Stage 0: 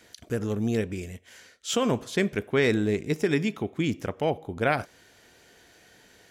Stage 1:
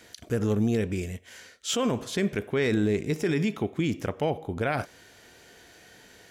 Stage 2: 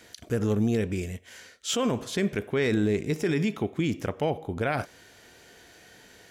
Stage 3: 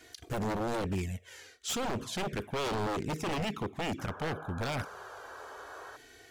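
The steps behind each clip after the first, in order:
harmonic-percussive split harmonic +3 dB; limiter -18 dBFS, peak gain reduction 8 dB; gain +1.5 dB
nothing audible
envelope flanger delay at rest 2.9 ms, full sweep at -20.5 dBFS; wavefolder -27.5 dBFS; painted sound noise, 3.98–5.97, 370–1700 Hz -47 dBFS

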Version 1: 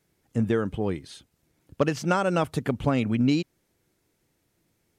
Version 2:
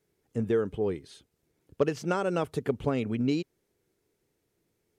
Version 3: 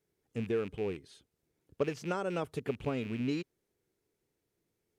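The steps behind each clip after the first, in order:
bell 420 Hz +9.5 dB 0.44 oct; gain -6.5 dB
rattling part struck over -35 dBFS, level -31 dBFS; gain -6 dB

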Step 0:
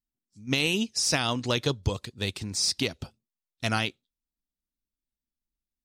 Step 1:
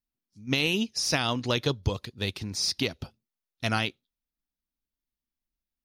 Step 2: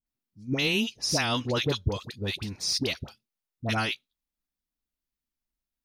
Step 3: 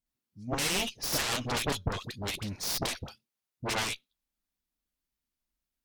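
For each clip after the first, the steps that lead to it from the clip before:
bell 7900 Hz -14 dB 0.32 oct
dispersion highs, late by 65 ms, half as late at 970 Hz
added harmonics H 3 -21 dB, 6 -24 dB, 7 -14 dB, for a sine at -12.5 dBFS; soft clip -26.5 dBFS, distortion -6 dB; gain +5 dB

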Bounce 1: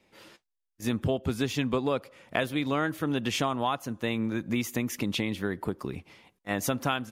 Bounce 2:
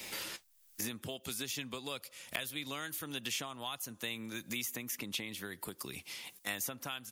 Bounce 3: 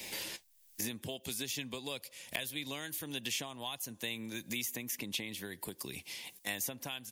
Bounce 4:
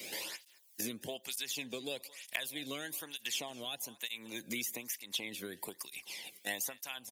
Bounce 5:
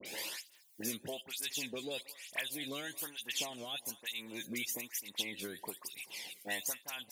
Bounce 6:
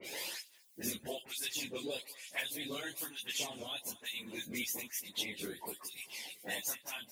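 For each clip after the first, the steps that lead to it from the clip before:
pre-emphasis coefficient 0.9; three-band squash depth 100%; gain +2 dB
bell 1300 Hz -13 dB 0.33 oct; gain +1 dB
echo 0.222 s -21 dB; tape flanging out of phase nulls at 1.1 Hz, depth 1.2 ms; gain +2.5 dB
dispersion highs, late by 58 ms, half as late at 2200 Hz
phase scrambler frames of 50 ms

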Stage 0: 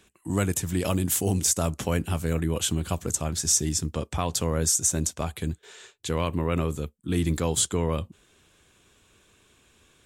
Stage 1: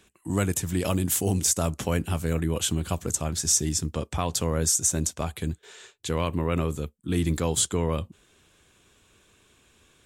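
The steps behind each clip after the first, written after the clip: nothing audible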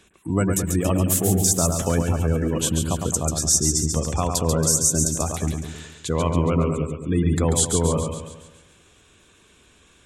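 spectral gate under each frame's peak -25 dB strong; split-band echo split 2300 Hz, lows 0.106 s, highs 0.139 s, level -5 dB; dynamic EQ 2900 Hz, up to -5 dB, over -41 dBFS, Q 1; gain +4 dB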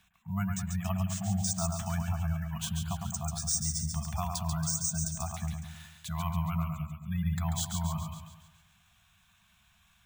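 de-hum 397.7 Hz, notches 12; FFT band-reject 220–640 Hz; careless resampling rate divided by 3×, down filtered, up hold; gain -9 dB

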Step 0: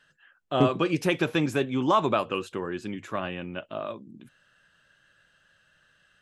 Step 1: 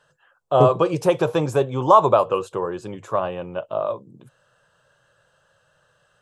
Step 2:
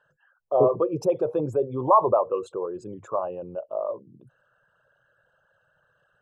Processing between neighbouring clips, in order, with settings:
graphic EQ 125/250/500/1000/2000/8000 Hz +10/-8/+12/+11/-8/+6 dB; gain -1 dB
formant sharpening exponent 2; gain -4.5 dB

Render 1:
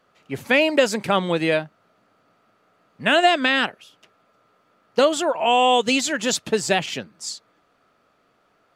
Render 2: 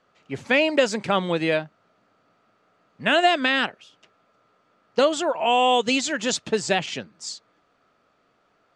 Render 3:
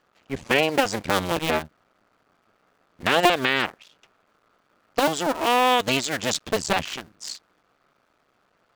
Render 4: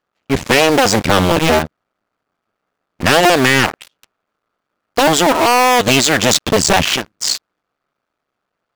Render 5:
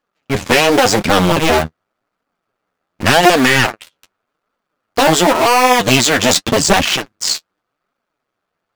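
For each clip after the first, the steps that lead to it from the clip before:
LPF 8000 Hz 24 dB/oct; gain -2 dB
cycle switcher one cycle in 2, muted; gain +2 dB
sample leveller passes 5
flange 0.88 Hz, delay 3.4 ms, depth 9.5 ms, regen +26%; gain +4 dB

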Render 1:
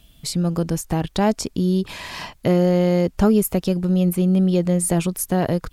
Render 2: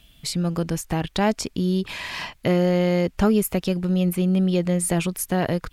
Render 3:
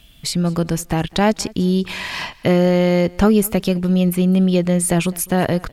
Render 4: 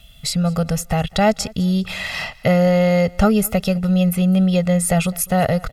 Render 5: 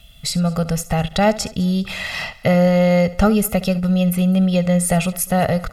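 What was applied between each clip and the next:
bell 2300 Hz +6.5 dB 1.7 oct; gain -3 dB
feedback echo 0.205 s, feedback 30%, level -23.5 dB; gain +5 dB
comb 1.5 ms, depth 90%; gain -2 dB
flutter echo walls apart 11.6 m, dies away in 0.24 s

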